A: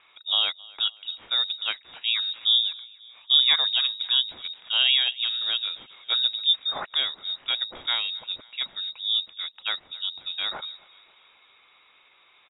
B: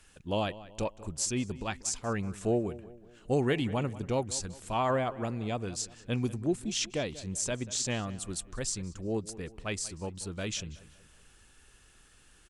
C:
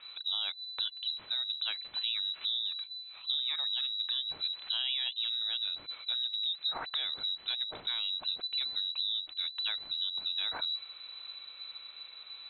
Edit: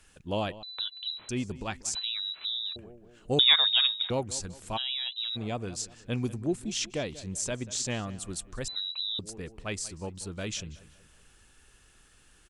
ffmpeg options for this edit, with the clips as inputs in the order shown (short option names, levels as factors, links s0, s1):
-filter_complex "[2:a]asplit=4[s0][s1][s2][s3];[1:a]asplit=6[s4][s5][s6][s7][s8][s9];[s4]atrim=end=0.632[s10];[s0]atrim=start=0.628:end=1.292[s11];[s5]atrim=start=1.288:end=1.952[s12];[s1]atrim=start=1.948:end=2.762[s13];[s6]atrim=start=2.758:end=3.392[s14];[0:a]atrim=start=3.388:end=4.102[s15];[s7]atrim=start=4.098:end=4.78[s16];[s2]atrim=start=4.76:end=5.37[s17];[s8]atrim=start=5.35:end=8.682[s18];[s3]atrim=start=8.678:end=9.192[s19];[s9]atrim=start=9.188[s20];[s10][s11]acrossfade=d=0.004:c1=hsin:c2=hsin[s21];[s21][s12]acrossfade=d=0.004:c1=hsin:c2=hsin[s22];[s22][s13]acrossfade=d=0.004:c1=hsin:c2=hsin[s23];[s23][s14]acrossfade=d=0.004:c1=hsin:c2=hsin[s24];[s24][s15]acrossfade=d=0.004:c1=hsin:c2=hsin[s25];[s25][s16]acrossfade=d=0.004:c1=hsin:c2=hsin[s26];[s26][s17]acrossfade=d=0.02:c1=tri:c2=tri[s27];[s27][s18]acrossfade=d=0.02:c1=tri:c2=tri[s28];[s28][s19]acrossfade=d=0.004:c1=hsin:c2=hsin[s29];[s29][s20]acrossfade=d=0.004:c1=hsin:c2=hsin"